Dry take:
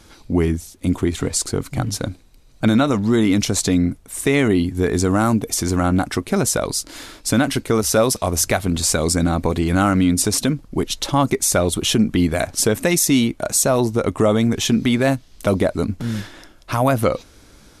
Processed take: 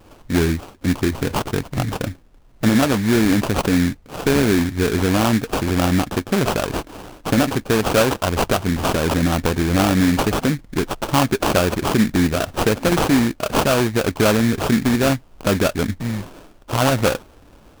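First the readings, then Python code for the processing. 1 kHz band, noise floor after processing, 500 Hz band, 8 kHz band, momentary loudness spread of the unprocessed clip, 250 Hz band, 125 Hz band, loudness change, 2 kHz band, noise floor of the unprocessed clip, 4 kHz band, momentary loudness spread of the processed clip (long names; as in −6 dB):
+2.0 dB, −49 dBFS, 0.0 dB, −8.0 dB, 7 LU, 0.0 dB, 0.0 dB, −0.5 dB, +2.5 dB, −49 dBFS, −0.5 dB, 8 LU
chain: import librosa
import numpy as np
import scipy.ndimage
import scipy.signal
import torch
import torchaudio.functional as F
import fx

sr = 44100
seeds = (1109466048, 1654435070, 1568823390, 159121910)

y = fx.sample_hold(x, sr, seeds[0], rate_hz=2000.0, jitter_pct=20)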